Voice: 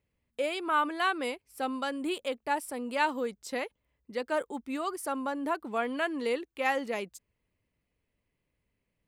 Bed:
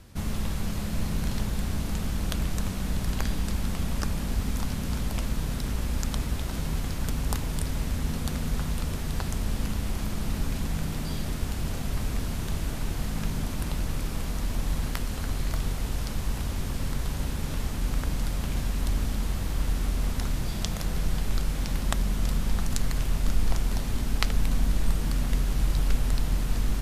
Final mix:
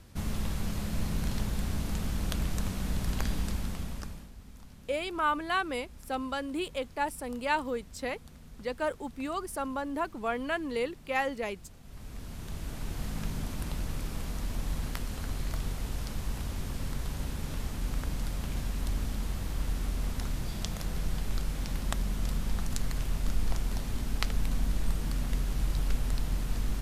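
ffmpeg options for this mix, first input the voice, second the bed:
-filter_complex "[0:a]adelay=4500,volume=-1dB[a];[1:a]volume=13.5dB,afade=t=out:st=3.4:d=0.91:silence=0.11885,afade=t=in:st=11.82:d=1.25:silence=0.149624[b];[a][b]amix=inputs=2:normalize=0"

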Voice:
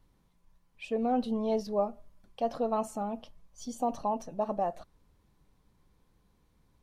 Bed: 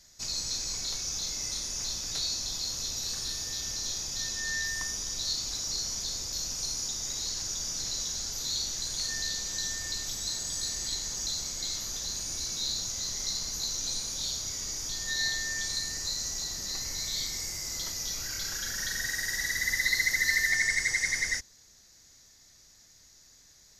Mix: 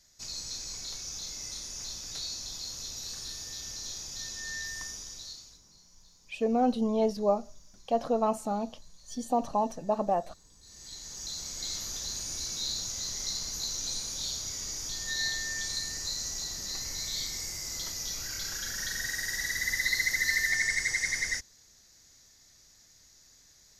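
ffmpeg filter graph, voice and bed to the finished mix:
-filter_complex "[0:a]adelay=5500,volume=3dB[a];[1:a]volume=20dB,afade=t=out:st=4.83:d=0.78:silence=0.0841395,afade=t=in:st=10.61:d=1.14:silence=0.0530884[b];[a][b]amix=inputs=2:normalize=0"

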